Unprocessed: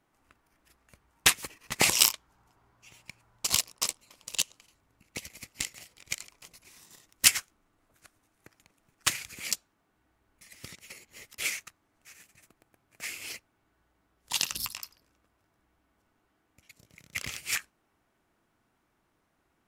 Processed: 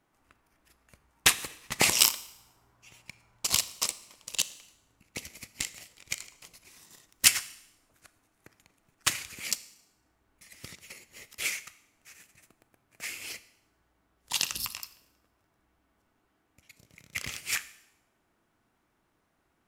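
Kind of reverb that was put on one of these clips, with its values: Schroeder reverb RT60 0.79 s, combs from 26 ms, DRR 15 dB

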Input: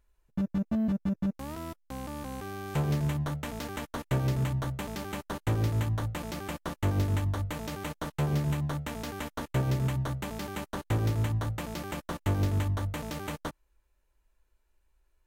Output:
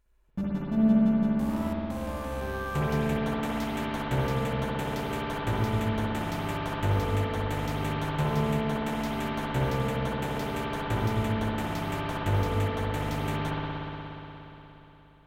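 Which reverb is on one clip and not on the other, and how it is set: spring tank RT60 3.7 s, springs 59 ms, chirp 45 ms, DRR -6.5 dB; trim -1.5 dB

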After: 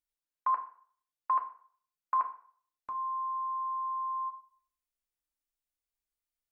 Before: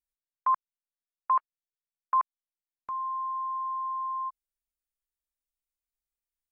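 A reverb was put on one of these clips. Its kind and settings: FDN reverb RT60 0.5 s, low-frequency decay 0.8×, high-frequency decay 0.85×, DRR 3 dB; trim -2.5 dB

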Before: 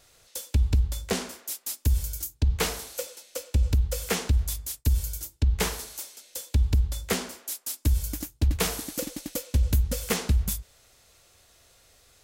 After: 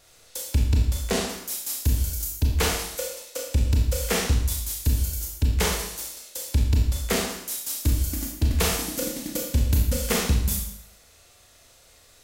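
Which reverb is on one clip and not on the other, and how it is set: Schroeder reverb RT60 0.68 s, combs from 26 ms, DRR -0.5 dB; trim +1 dB

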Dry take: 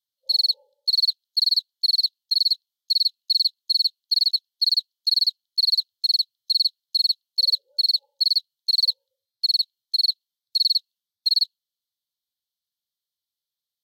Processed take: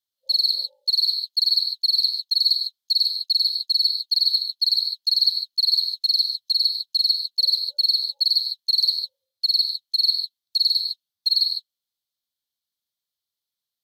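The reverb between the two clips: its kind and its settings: gated-style reverb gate 170 ms rising, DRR 4.5 dB

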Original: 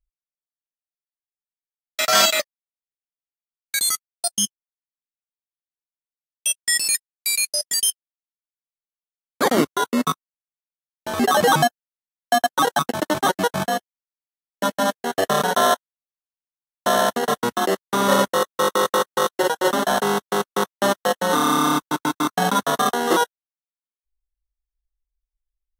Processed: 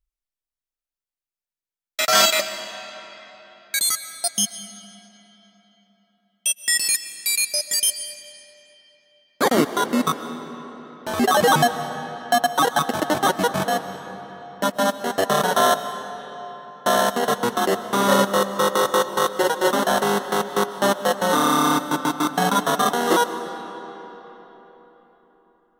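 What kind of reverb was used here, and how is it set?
algorithmic reverb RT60 4.2 s, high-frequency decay 0.7×, pre-delay 90 ms, DRR 10.5 dB

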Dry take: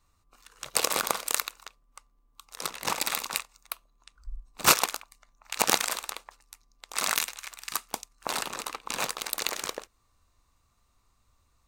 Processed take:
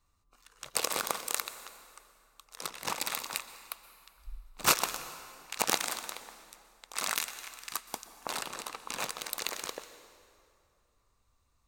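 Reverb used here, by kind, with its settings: plate-style reverb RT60 2.5 s, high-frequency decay 0.75×, pre-delay 110 ms, DRR 12.5 dB; trim -5 dB

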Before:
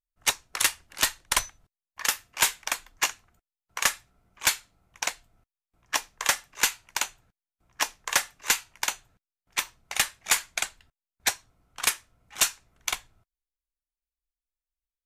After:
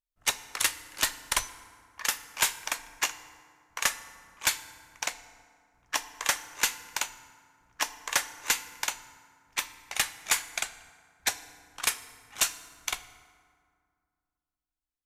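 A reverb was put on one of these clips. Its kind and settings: FDN reverb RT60 2.1 s, low-frequency decay 1.4×, high-frequency decay 0.55×, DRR 12.5 dB; trim -3 dB

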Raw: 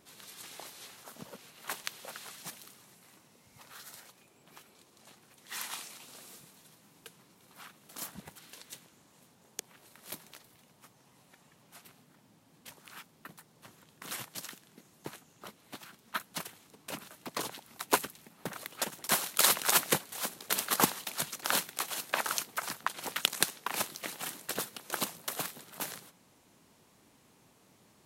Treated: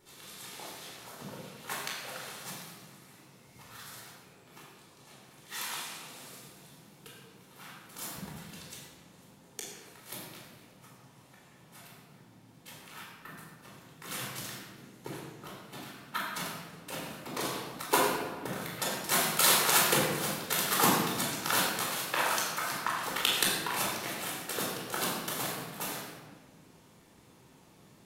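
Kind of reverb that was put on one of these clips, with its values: simulated room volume 1300 m³, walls mixed, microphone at 4.3 m; trim -4 dB

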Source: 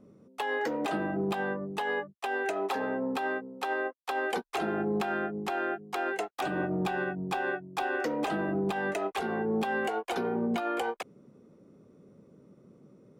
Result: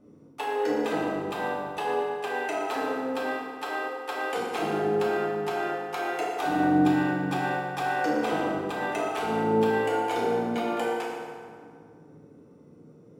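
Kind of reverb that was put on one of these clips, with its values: FDN reverb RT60 2.1 s, low-frequency decay 0.85×, high-frequency decay 0.65×, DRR -5.5 dB; trim -2.5 dB

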